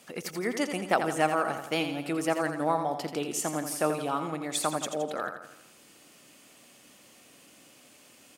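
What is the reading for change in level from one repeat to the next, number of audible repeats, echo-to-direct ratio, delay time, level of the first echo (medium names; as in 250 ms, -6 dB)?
-6.0 dB, 5, -6.5 dB, 84 ms, -8.0 dB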